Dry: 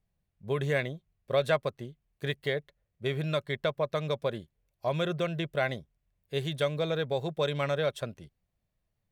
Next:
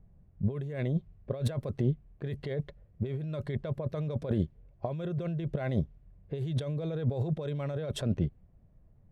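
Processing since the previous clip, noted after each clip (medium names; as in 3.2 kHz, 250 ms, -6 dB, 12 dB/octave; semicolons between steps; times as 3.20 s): level-controlled noise filter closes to 1.7 kHz, open at -26.5 dBFS; tilt shelf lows +8.5 dB, about 700 Hz; compressor with a negative ratio -36 dBFS, ratio -1; trim +4 dB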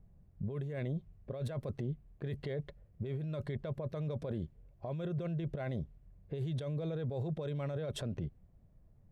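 peak limiter -27.5 dBFS, peak gain reduction 10 dB; trim -2.5 dB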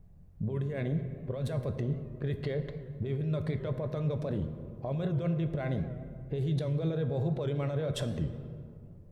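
reverberation RT60 2.3 s, pre-delay 7 ms, DRR 6.5 dB; warped record 78 rpm, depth 100 cents; trim +4.5 dB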